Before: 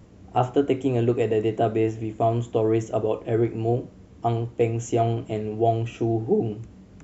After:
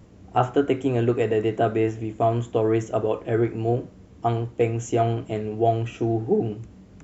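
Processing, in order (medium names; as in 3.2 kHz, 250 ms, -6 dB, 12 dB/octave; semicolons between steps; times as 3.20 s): dynamic bell 1.5 kHz, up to +7 dB, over -44 dBFS, Q 1.6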